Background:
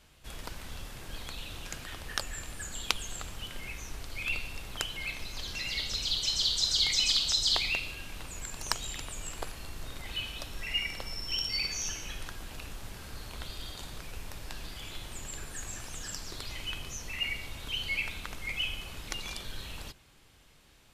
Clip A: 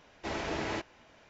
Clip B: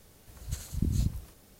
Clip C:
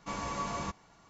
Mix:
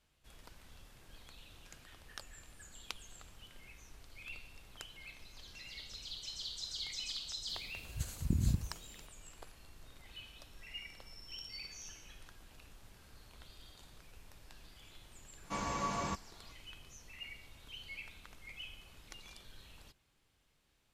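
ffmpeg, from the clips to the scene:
-filter_complex "[0:a]volume=-15dB[a];[2:a]atrim=end=1.59,asetpts=PTS-STARTPTS,volume=-3dB,afade=t=in:d=0.004:c=hsin,afade=t=out:st=1.586:d=0.004:c=hsin,adelay=7480[b];[3:a]atrim=end=1.09,asetpts=PTS-STARTPTS,volume=-1dB,afade=t=in:d=0.004:c=hsin,afade=t=out:st=1.086:d=0.004:c=hsin,adelay=15440[c];[a][b][c]amix=inputs=3:normalize=0"

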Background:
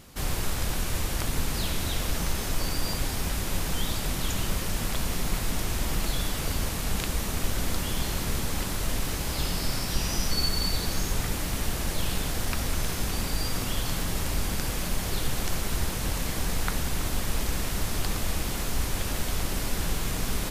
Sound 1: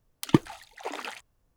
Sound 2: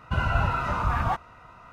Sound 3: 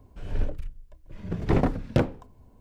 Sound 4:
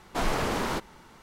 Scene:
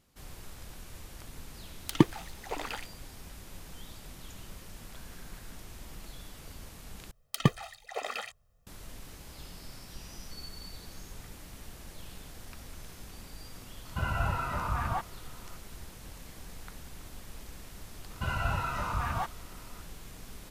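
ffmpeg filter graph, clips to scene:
-filter_complex "[1:a]asplit=2[a][b];[2:a]asplit=2[c][d];[0:a]volume=-18dB[e];[4:a]bandpass=f=1.6k:t=q:w=10:csg=0[f];[b]aecho=1:1:1.6:0.99[g];[d]highshelf=f=3.9k:g=11[h];[e]asplit=2[i][j];[i]atrim=end=7.114[k];[g]atrim=end=1.56,asetpts=PTS-STARTPTS,volume=-3dB[l];[j]atrim=start=8.666[m];[a]atrim=end=1.56,asetpts=PTS-STARTPTS,volume=-1.5dB,afade=t=in:d=0.004:c=hsin,afade=t=out:st=1.556:d=0.004:c=hsin,adelay=1660[n];[f]atrim=end=1.22,asetpts=PTS-STARTPTS,volume=-17.5dB,afade=t=in:d=0.004:c=hsin,afade=t=out:st=1.216:d=0.004:c=hsin,adelay=210357S[o];[c]atrim=end=1.72,asetpts=PTS-STARTPTS,volume=-6.5dB,afade=t=in:d=0.004:c=hsin,afade=t=out:st=1.716:d=0.004:c=hsin,adelay=13850[p];[h]atrim=end=1.72,asetpts=PTS-STARTPTS,volume=-7.5dB,afade=t=in:d=0.004:c=hsin,afade=t=out:st=1.716:d=0.004:c=hsin,adelay=18100[q];[k][l]acrossfade=d=0.004:c1=hsin:c2=hsin[r];[r][m]acrossfade=d=0.004:c1=hsin:c2=hsin[s];[s][n][o][p][q]amix=inputs=5:normalize=0"

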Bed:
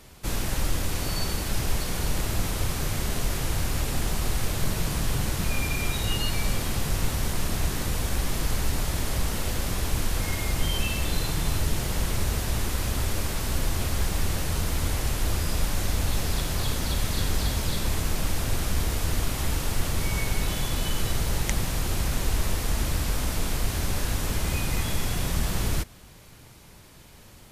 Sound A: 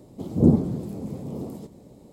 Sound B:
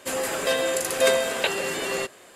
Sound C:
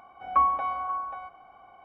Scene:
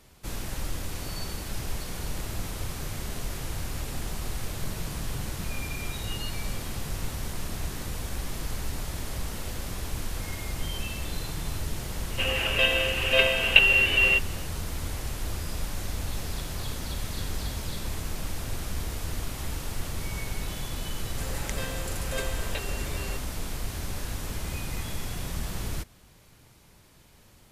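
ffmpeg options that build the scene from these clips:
-filter_complex "[2:a]asplit=2[a][b];[0:a]volume=-6.5dB[c];[a]lowpass=f=2.8k:t=q:w=13[d];[b]aecho=1:1:6.9:0.65[e];[d]atrim=end=2.35,asetpts=PTS-STARTPTS,volume=-6dB,afade=t=in:d=0.004:c=hsin,afade=t=out:st=2.346:d=0.004:c=hsin,adelay=12120[f];[e]atrim=end=2.35,asetpts=PTS-STARTPTS,volume=-13.5dB,afade=t=in:d=0.004:c=hsin,afade=t=out:st=2.346:d=0.004:c=hsin,adelay=21110[g];[c][f][g]amix=inputs=3:normalize=0"

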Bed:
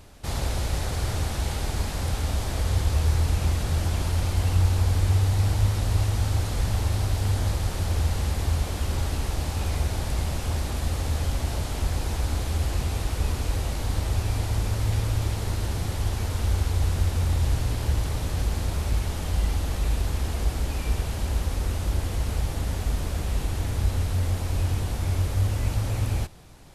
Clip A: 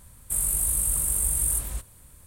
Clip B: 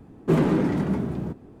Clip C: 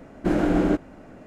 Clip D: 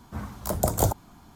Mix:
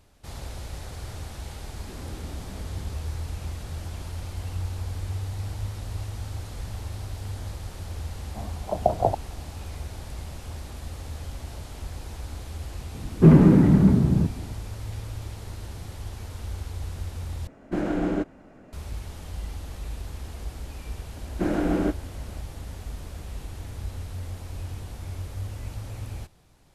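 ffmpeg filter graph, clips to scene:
-filter_complex "[2:a]asplit=2[a][b];[3:a]asplit=2[c][d];[0:a]volume=-10dB[e];[a]acompressor=threshold=-31dB:ratio=6:attack=3.2:release=140:knee=1:detection=peak[f];[4:a]lowpass=f=720:t=q:w=4.2[g];[b]bass=f=250:g=12,treble=f=4k:g=-14[h];[e]asplit=2[i][j];[i]atrim=end=17.474[k];[c]atrim=end=1.26,asetpts=PTS-STARTPTS,volume=-5dB[l];[j]atrim=start=18.726[m];[f]atrim=end=1.6,asetpts=PTS-STARTPTS,volume=-10.5dB,afade=t=in:d=0.004:c=hsin,afade=t=out:st=1.596:d=0.004:c=hsin,adelay=1610[n];[g]atrim=end=1.35,asetpts=PTS-STARTPTS,volume=-5dB,afade=t=in:d=0.004:c=hsin,afade=t=out:st=1.346:d=0.004:c=hsin,adelay=8220[o];[h]atrim=end=1.6,asetpts=PTS-STARTPTS,afade=t=in:d=0.004:c=hsin,afade=t=out:st=1.596:d=0.004:c=hsin,adelay=12940[p];[d]atrim=end=1.26,asetpts=PTS-STARTPTS,volume=-3.5dB,afade=t=in:d=0.004:c=hsin,afade=t=out:st=1.256:d=0.004:c=hsin,adelay=21150[q];[k][l]acrossfade=d=0.004:c1=hsin:c2=hsin[r];[r][m]acrossfade=d=0.004:c1=hsin:c2=hsin[s];[s][n][o][p][q]amix=inputs=5:normalize=0"

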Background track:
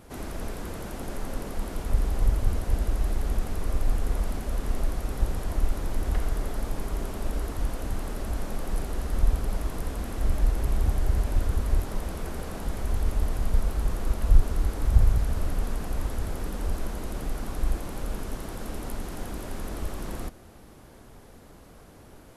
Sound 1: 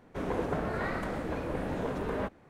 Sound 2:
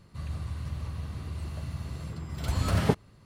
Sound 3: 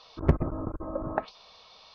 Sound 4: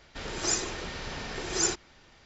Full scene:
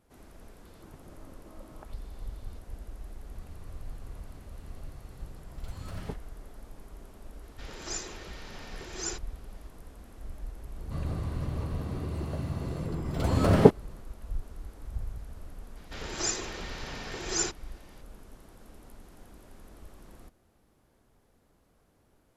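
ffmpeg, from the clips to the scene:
-filter_complex "[2:a]asplit=2[a][b];[4:a]asplit=2[c][d];[0:a]volume=-17dB[e];[3:a]acompressor=threshold=-38dB:ratio=6:attack=22:release=107:knee=1:detection=peak[f];[b]equalizer=f=390:w=0.48:g=14[g];[f]atrim=end=1.94,asetpts=PTS-STARTPTS,volume=-14dB,afade=t=in:d=0.004:c=hsin,afade=t=out:st=1.936:d=0.004:c=hsin,adelay=650[h];[a]atrim=end=3.25,asetpts=PTS-STARTPTS,volume=-15dB,afade=t=in:d=0.004:c=hsin,afade=t=out:st=3.246:d=0.004:c=hsin,adelay=3200[i];[c]atrim=end=2.25,asetpts=PTS-STARTPTS,volume=-8.5dB,afade=t=in:d=0.004:c=hsin,afade=t=out:st=2.246:d=0.004:c=hsin,adelay=7430[j];[g]atrim=end=3.25,asetpts=PTS-STARTPTS,volume=-2.5dB,afade=t=in:d=0.004:c=hsin,afade=t=out:st=3.246:d=0.004:c=hsin,adelay=10760[k];[d]atrim=end=2.25,asetpts=PTS-STARTPTS,volume=-2.5dB,afade=t=in:d=0.004:c=hsin,afade=t=out:st=2.246:d=0.004:c=hsin,adelay=15760[l];[e][h][i][j][k][l]amix=inputs=6:normalize=0"

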